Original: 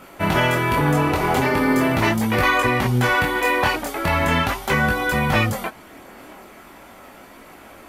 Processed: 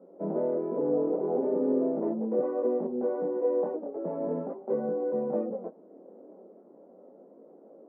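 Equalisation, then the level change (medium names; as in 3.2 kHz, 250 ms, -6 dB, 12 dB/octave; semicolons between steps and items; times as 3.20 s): elliptic high-pass 180 Hz, stop band 40 dB; four-pole ladder low-pass 560 Hz, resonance 60%; 0.0 dB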